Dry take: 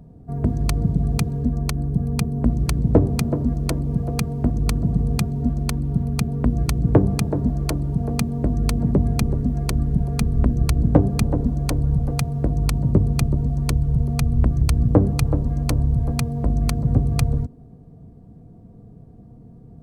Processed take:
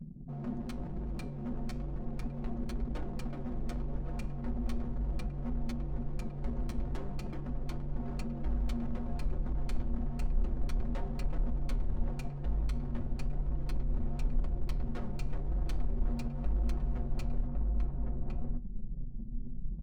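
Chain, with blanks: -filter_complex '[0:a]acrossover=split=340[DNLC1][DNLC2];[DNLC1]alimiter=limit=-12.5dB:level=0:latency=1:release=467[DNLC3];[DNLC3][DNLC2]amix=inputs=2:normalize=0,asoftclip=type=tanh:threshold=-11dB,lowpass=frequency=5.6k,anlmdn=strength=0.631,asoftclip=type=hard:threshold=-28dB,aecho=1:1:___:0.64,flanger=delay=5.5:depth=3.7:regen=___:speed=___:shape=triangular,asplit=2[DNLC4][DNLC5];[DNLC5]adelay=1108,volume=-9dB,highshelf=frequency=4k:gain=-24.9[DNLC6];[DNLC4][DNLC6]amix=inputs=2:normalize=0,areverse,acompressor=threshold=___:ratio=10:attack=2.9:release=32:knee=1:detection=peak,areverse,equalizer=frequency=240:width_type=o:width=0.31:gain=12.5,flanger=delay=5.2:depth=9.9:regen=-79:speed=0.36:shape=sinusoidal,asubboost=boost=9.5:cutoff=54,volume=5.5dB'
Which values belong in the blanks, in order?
5.5, -32, 0.96, -40dB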